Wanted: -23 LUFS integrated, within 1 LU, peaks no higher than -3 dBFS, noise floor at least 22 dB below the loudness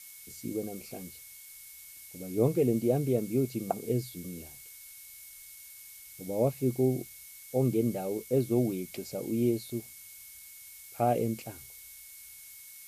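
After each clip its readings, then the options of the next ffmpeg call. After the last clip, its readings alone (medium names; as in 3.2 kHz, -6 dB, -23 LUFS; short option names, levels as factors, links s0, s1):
steady tone 2.2 kHz; tone level -58 dBFS; noise floor -50 dBFS; noise floor target -53 dBFS; loudness -31.0 LUFS; peak level -13.5 dBFS; loudness target -23.0 LUFS
-> -af "bandreject=f=2200:w=30"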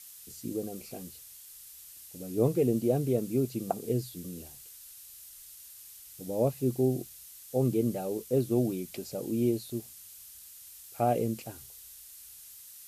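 steady tone not found; noise floor -50 dBFS; noise floor target -53 dBFS
-> -af "afftdn=nr=6:nf=-50"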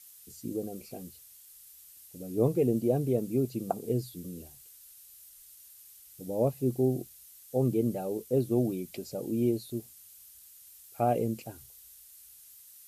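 noise floor -54 dBFS; loudness -31.0 LUFS; peak level -13.5 dBFS; loudness target -23.0 LUFS
-> -af "volume=2.51"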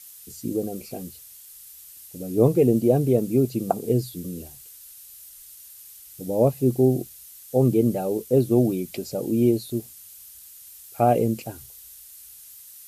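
loudness -23.0 LUFS; peak level -5.5 dBFS; noise floor -46 dBFS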